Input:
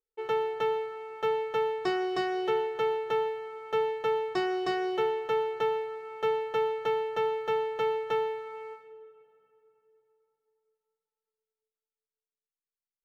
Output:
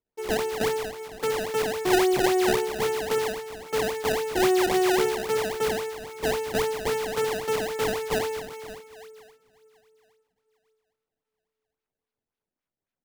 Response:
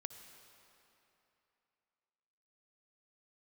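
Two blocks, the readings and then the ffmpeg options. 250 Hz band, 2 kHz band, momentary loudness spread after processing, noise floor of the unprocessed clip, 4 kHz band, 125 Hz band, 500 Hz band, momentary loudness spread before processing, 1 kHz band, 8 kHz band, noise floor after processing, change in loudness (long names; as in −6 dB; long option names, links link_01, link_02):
+9.5 dB, +7.5 dB, 10 LU, below −85 dBFS, +8.5 dB, +12.0 dB, +3.5 dB, 5 LU, +2.0 dB, can't be measured, below −85 dBFS, +4.5 dB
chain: -filter_complex "[0:a]equalizer=frequency=100:width_type=o:width=0.67:gain=6,equalizer=frequency=250:width_type=o:width=0.67:gain=12,equalizer=frequency=2500:width_type=o:width=0.67:gain=5,asplit=2[link_01][link_02];[link_02]aecho=0:1:46|76:0.596|0.596[link_03];[link_01][link_03]amix=inputs=2:normalize=0,acrusher=samples=23:mix=1:aa=0.000001:lfo=1:lforange=36.8:lforate=3.7"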